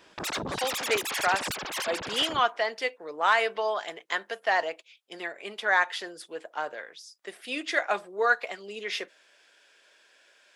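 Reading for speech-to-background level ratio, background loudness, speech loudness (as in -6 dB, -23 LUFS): 3.0 dB, -32.0 LUFS, -29.0 LUFS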